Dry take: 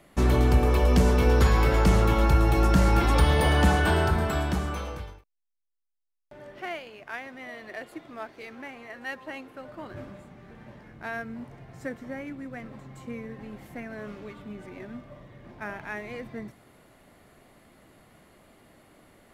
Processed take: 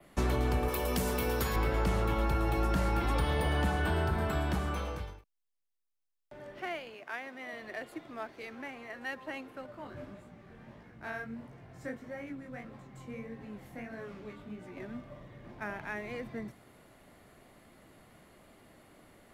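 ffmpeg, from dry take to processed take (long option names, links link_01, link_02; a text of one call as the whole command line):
ffmpeg -i in.wav -filter_complex "[0:a]asettb=1/sr,asplit=3[link_01][link_02][link_03];[link_01]atrim=end=0.684[link_04];[link_02]atrim=start=0.68:end=1.56,asetpts=PTS-STARTPTS,afade=type=in:duration=0.004:curve=qsin,afade=type=out:start_time=0.876:duration=0.004:curve=qsin,aemphasis=mode=production:type=bsi[link_05];[link_03]atrim=start=1.556[link_06];[link_04][link_05]acrossfade=duration=0.004:curve1=hsin:curve2=qsin[link_07];[link_07][link_06]acrossfade=duration=0.004:curve1=qsin:curve2=hsin,asettb=1/sr,asplit=3[link_08][link_09][link_10];[link_08]atrim=end=6.944[link_11];[link_09]atrim=start=6.94:end=7.53,asetpts=PTS-STARTPTS,afade=type=in:duration=0.004:curve=qsin,afade=type=out:start_time=0.586:duration=0.004:curve=qsin,highpass=220[link_12];[link_10]atrim=start=7.526[link_13];[link_11][link_12]acrossfade=duration=0.004:curve1=hsin:curve2=qsin[link_14];[link_14][link_13]acrossfade=duration=0.004:curve1=qsin:curve2=hsin,asettb=1/sr,asplit=3[link_15][link_16][link_17];[link_15]atrim=end=9.664[link_18];[link_16]atrim=start=9.66:end=14.77,asetpts=PTS-STARTPTS,afade=type=in:duration=0.004:curve=qsin,afade=type=out:start_time=5.106:duration=0.004:curve=qsin,flanger=delay=16.5:depth=7.6:speed=1.6[link_19];[link_17]atrim=start=14.766[link_20];[link_18][link_19]acrossfade=duration=0.004:curve1=hsin:curve2=qsin[link_21];[link_21][link_20]acrossfade=duration=0.004:curve1=qsin:curve2=hsin,adynamicequalizer=threshold=0.00282:dfrequency=6300:dqfactor=1.3:tfrequency=6300:tqfactor=1.3:attack=5:release=100:ratio=0.375:range=2.5:mode=cutabove:tftype=bell,acrossover=split=190|380[link_22][link_23][link_24];[link_22]acompressor=threshold=-28dB:ratio=4[link_25];[link_23]acompressor=threshold=-38dB:ratio=4[link_26];[link_24]acompressor=threshold=-31dB:ratio=4[link_27];[link_25][link_26][link_27]amix=inputs=3:normalize=0,volume=-2dB" out.wav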